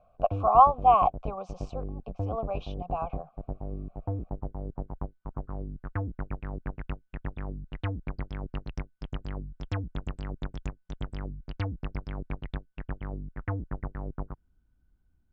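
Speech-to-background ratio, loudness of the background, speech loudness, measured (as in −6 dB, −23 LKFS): 14.0 dB, −38.0 LKFS, −24.0 LKFS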